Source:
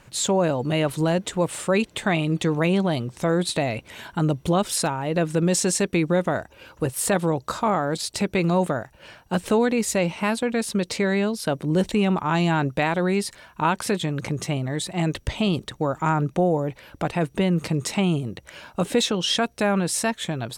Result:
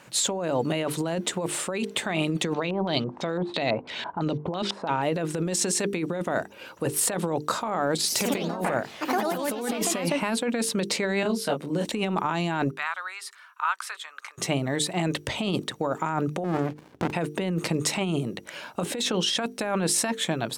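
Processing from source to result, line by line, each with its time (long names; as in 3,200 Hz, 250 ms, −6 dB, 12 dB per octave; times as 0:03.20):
0:02.54–0:05.02: auto-filter low-pass square 3 Hz 920–4,300 Hz
0:07.96–0:10.52: delay with pitch and tempo change per echo 82 ms, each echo +3 semitones, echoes 3
0:11.23–0:11.85: micro pitch shift up and down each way 33 cents
0:12.71–0:14.38: four-pole ladder high-pass 1,100 Hz, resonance 60%
0:16.44–0:17.13: windowed peak hold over 65 samples
whole clip: high-pass filter 180 Hz 12 dB per octave; mains-hum notches 50/100/150/200/250/300/350/400/450 Hz; compressor whose output falls as the input rises −26 dBFS, ratio −1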